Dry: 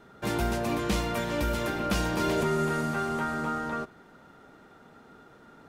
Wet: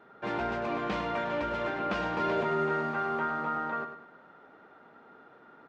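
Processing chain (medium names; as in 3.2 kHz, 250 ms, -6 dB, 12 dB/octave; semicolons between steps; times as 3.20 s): high-pass 960 Hz 6 dB/octave; tape spacing loss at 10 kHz 42 dB; feedback delay 102 ms, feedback 34%, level -9 dB; trim +7 dB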